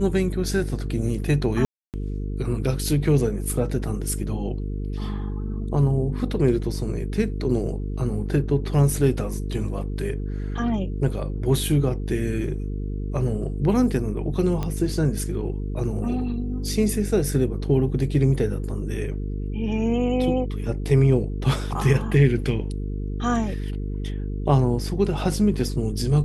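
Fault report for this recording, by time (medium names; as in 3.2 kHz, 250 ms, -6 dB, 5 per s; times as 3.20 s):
buzz 50 Hz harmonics 9 -28 dBFS
1.65–1.94 s: dropout 288 ms
14.63 s: pop -15 dBFS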